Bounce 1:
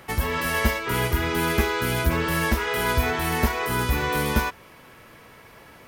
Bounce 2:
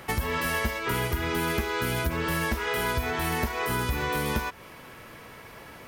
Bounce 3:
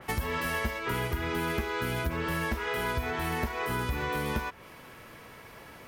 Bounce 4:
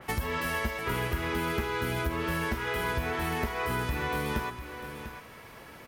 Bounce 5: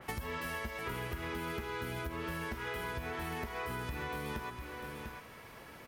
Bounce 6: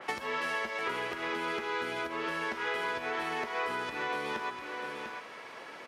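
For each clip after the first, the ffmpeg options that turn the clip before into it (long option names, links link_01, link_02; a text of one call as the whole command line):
ffmpeg -i in.wav -af "acompressor=threshold=-27dB:ratio=6,volume=2.5dB" out.wav
ffmpeg -i in.wav -af "adynamicequalizer=threshold=0.00562:dfrequency=3700:dqfactor=0.7:tfrequency=3700:tqfactor=0.7:attack=5:release=100:ratio=0.375:range=2.5:mode=cutabove:tftype=highshelf,volume=-3dB" out.wav
ffmpeg -i in.wav -af "aecho=1:1:464|696:0.106|0.299" out.wav
ffmpeg -i in.wav -af "acompressor=threshold=-32dB:ratio=6,volume=-3.5dB" out.wav
ffmpeg -i in.wav -af "highpass=370,lowpass=5900,volume=7dB" out.wav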